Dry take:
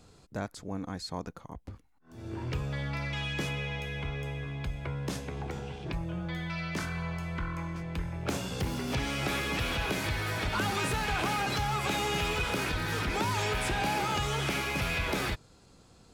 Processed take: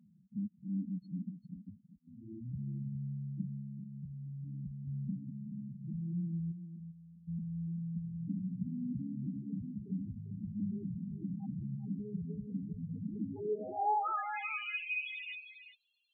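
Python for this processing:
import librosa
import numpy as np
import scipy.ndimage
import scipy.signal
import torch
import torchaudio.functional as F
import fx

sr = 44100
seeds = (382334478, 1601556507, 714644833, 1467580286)

y = fx.filter_sweep_bandpass(x, sr, from_hz=200.0, to_hz=2900.0, start_s=13.16, end_s=14.59, q=3.1)
y = fx.spec_topn(y, sr, count=4)
y = fx.pre_emphasis(y, sr, coefficient=0.9, at=(6.51, 7.27), fade=0.02)
y = y + 10.0 ** (-10.5 / 20.0) * np.pad(y, (int(396 * sr / 1000.0), 0))[:len(y)]
y = y * librosa.db_to_amplitude(4.0)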